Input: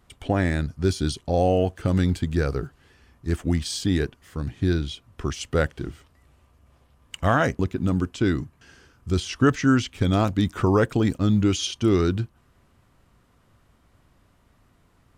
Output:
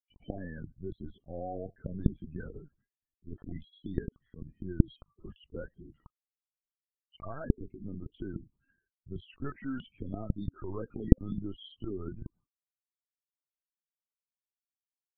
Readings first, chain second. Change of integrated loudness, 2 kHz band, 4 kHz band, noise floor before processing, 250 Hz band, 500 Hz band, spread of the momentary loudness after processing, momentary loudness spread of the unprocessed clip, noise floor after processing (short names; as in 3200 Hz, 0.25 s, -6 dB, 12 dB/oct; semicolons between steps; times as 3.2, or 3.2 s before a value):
-13.5 dB, -23.0 dB, -23.5 dB, -61 dBFS, -13.5 dB, -17.0 dB, 18 LU, 12 LU, under -85 dBFS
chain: gate -50 dBFS, range -47 dB; loudest bins only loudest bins 16; LPC vocoder at 8 kHz pitch kept; gain -18 dB